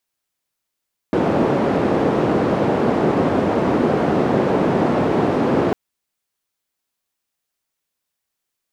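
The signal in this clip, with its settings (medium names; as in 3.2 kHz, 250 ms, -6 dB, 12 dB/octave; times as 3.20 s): noise band 170–460 Hz, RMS -17.5 dBFS 4.60 s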